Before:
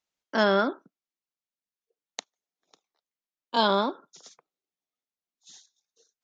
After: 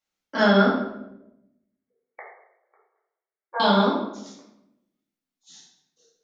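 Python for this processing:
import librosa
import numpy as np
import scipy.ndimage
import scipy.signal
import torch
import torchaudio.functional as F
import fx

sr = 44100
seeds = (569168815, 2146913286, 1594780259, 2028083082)

y = fx.brickwall_bandpass(x, sr, low_hz=350.0, high_hz=2300.0, at=(0.68, 3.6))
y = fx.room_shoebox(y, sr, seeds[0], volume_m3=250.0, walls='mixed', distance_m=2.3)
y = y * 10.0 ** (-3.5 / 20.0)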